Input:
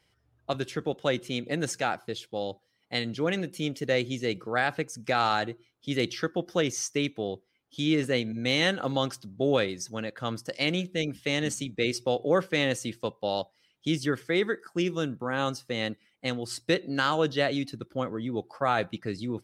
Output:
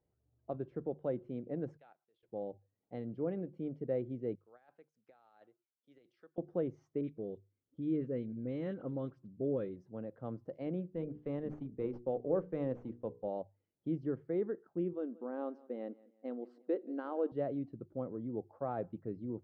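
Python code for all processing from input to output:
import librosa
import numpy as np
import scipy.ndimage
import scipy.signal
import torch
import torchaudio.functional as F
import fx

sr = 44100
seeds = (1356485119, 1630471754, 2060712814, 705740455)

y = fx.chain(x, sr, fx.level_steps(step_db=15),
    fx.bandpass_q(hz=3600.0, q=1.5), at=(1.77, 2.23))
y = fx.chain(y, sr, fx.differentiator(),
    fx.over_compress(threshold_db=-43.0, ratio=-0.5), at=(4.35, 6.38))
y = fx.chain(y, sr, fx.peak_eq(hz=760.0, db=-11.0, octaves=0.64),
    fx.dispersion(late='highs', ms=41.0, hz=2100.0), at=(7.01, 9.76))
y = fx.chain(y, sr, fx.hum_notches(base_hz=60, count=8),
    fx.running_max(window=3), at=(10.9, 13.28))
y = fx.chain(y, sr, fx.brickwall_highpass(low_hz=210.0),
    fx.echo_feedback(ms=176, feedback_pct=37, wet_db=-22), at=(14.93, 17.32))
y = scipy.signal.sosfilt(scipy.signal.cheby1(2, 1.0, 560.0, 'lowpass', fs=sr, output='sos'), y)
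y = fx.hum_notches(y, sr, base_hz=50, count=3)
y = y * 10.0 ** (-7.5 / 20.0)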